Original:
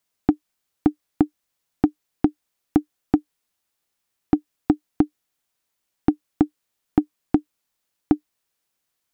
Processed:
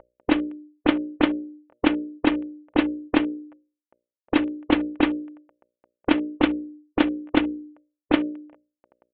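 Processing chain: CVSD 16 kbps; negative-ratio compressor -24 dBFS, ratio -0.5; dynamic EQ 230 Hz, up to +7 dB, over -43 dBFS, Q 1.7; low-pass opened by the level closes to 840 Hz, open at -23.5 dBFS; bell 510 Hz +10.5 dB 1.4 oct; notches 60/120/180/240/300/360/420/480/540/600 Hz; comb 3.4 ms, depth 36%; spectral compressor 2:1; gain +4 dB

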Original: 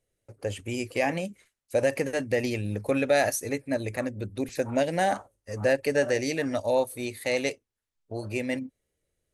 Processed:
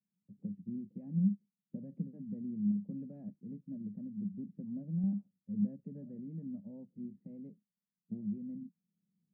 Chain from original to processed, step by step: recorder AGC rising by 15 dB/s; Butterworth band-pass 190 Hz, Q 4.4; 2.71–5.04 compressor 2:1, threshold -41 dBFS, peak gain reduction 5 dB; gain +6 dB

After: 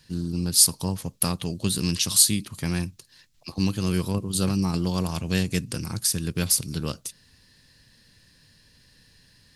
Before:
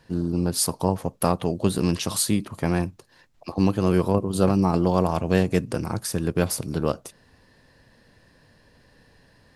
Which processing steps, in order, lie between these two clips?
EQ curve 160 Hz 0 dB, 680 Hz -12 dB, 4200 Hz +9 dB; gain -1.5 dB

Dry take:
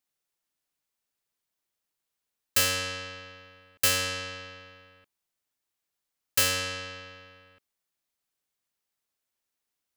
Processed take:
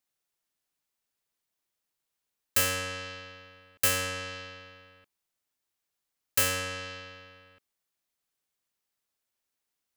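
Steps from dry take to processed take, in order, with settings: dynamic EQ 4300 Hz, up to -7 dB, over -41 dBFS, Q 1.2

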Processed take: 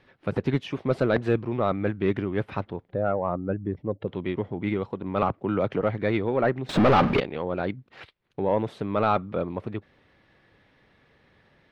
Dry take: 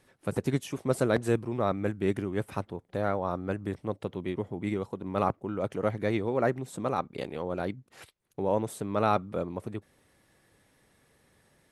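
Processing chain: 2.91–4.08 spectral contrast raised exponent 1.6; bell 4100 Hz +8 dB 2.7 oct; 6.69–7.2 power-law curve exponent 0.35; soft clip -14.5 dBFS, distortion -18 dB; air absorption 330 m; 5.22–5.81 three-band squash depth 100%; gain +4.5 dB

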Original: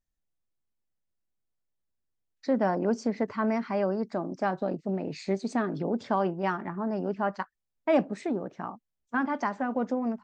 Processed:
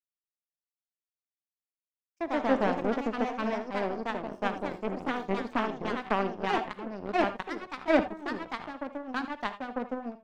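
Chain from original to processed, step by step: power-law curve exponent 2; echoes that change speed 0.117 s, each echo +2 st, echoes 2; non-linear reverb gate 0.1 s rising, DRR 11 dB; gain +4 dB

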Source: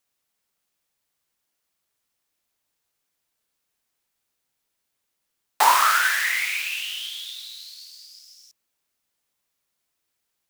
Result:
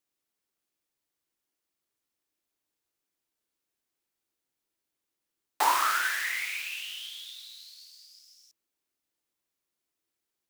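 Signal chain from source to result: bell 330 Hz +9 dB 0.68 oct; gain -8 dB

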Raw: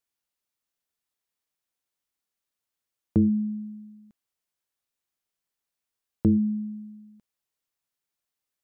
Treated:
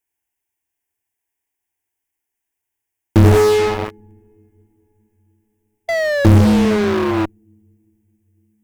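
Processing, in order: 3.24–3.92 minimum comb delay 2.5 ms; fixed phaser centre 840 Hz, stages 8; on a send at -6 dB: reverb, pre-delay 73 ms; 5.88–7.26 on the sum: painted sound fall 320–680 Hz -43 dBFS; bell 97 Hz +9.5 dB 0.31 oct; in parallel at -6.5 dB: fuzz box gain 50 dB, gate -43 dBFS; on the sum: gain +7 dB

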